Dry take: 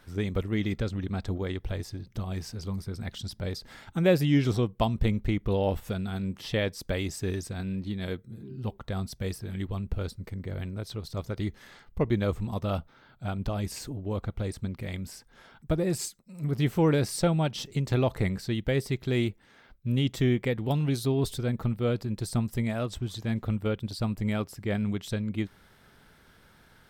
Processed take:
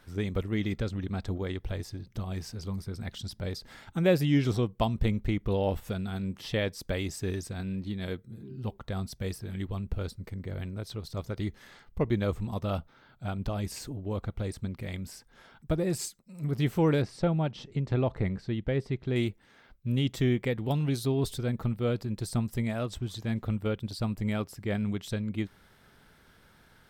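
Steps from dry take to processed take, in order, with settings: 17.02–19.16 s: tape spacing loss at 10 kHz 21 dB; trim -1.5 dB

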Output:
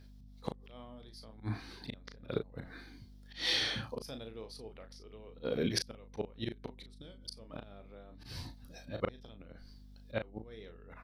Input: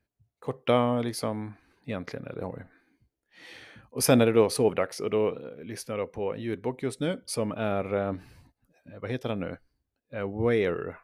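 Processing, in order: high-order bell 4.3 kHz +11.5 dB 1 oct; inverted gate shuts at -22 dBFS, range -37 dB; slow attack 150 ms; hum 50 Hz, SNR 13 dB; doubling 36 ms -7.5 dB; trim +10.5 dB

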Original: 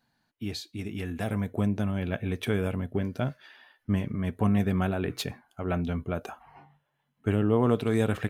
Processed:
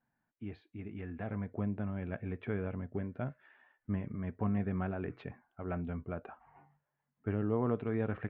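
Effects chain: low-pass 2.2 kHz 24 dB/octave; trim -8.5 dB

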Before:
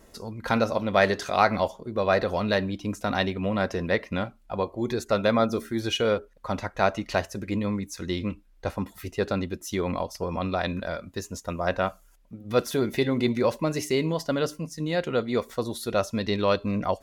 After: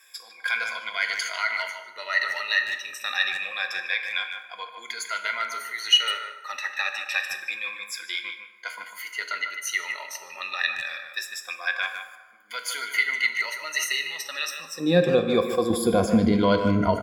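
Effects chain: drifting ripple filter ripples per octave 1.8, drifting -0.26 Hz, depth 20 dB; 15.70–16.32 s: bass shelf 450 Hz +11.5 dB; peak limiter -12 dBFS, peak gain reduction 10.5 dB; high-pass sweep 2 kHz -> 78 Hz, 14.53–15.13 s; speakerphone echo 150 ms, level -7 dB; plate-style reverb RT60 1.4 s, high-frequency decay 0.55×, DRR 7 dB

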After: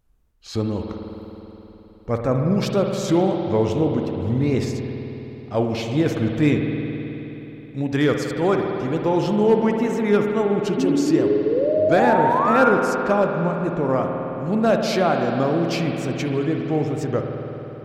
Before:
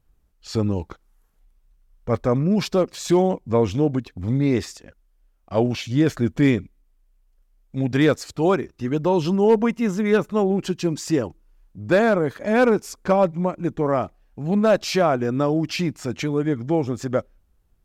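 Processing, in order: painted sound rise, 10.77–12.73 s, 240–1500 Hz -20 dBFS; wow and flutter 110 cents; spring tank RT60 3.7 s, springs 53 ms, chirp 25 ms, DRR 2.5 dB; trim -1.5 dB

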